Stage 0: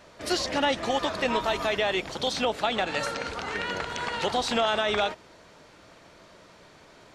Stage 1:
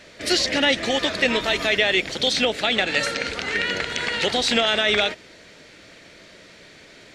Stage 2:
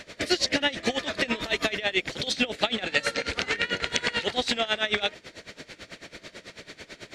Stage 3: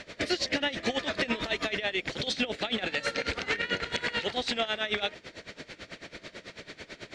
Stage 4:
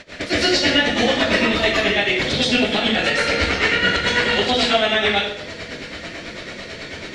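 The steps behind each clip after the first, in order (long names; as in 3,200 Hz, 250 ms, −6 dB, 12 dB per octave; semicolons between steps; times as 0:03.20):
octave-band graphic EQ 250/500/1,000/2,000/4,000/8,000 Hz +3/+3/−9/+9/+5/+4 dB; level +2.5 dB
downward compressor 3 to 1, threshold −28 dBFS, peak gain reduction 10.5 dB; tremolo with a sine in dB 9.1 Hz, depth 19 dB; level +7.5 dB
brickwall limiter −16.5 dBFS, peak gain reduction 10 dB; high-frequency loss of the air 56 metres
convolution reverb RT60 0.65 s, pre-delay 115 ms, DRR −9.5 dB; level +3 dB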